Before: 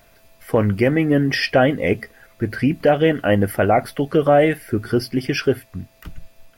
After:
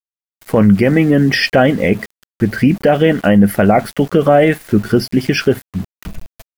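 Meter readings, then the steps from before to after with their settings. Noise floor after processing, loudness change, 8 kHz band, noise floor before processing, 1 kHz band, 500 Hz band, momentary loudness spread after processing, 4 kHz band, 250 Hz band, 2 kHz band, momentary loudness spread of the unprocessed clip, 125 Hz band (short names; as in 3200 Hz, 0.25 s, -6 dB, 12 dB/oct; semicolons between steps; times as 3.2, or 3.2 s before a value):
under -85 dBFS, +5.5 dB, +6.5 dB, -54 dBFS, +3.5 dB, +4.0 dB, 9 LU, +5.5 dB, +7.5 dB, +5.0 dB, 10 LU, +6.0 dB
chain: bell 200 Hz +11.5 dB 0.24 oct; sample gate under -36.5 dBFS; maximiser +7 dB; gain -1 dB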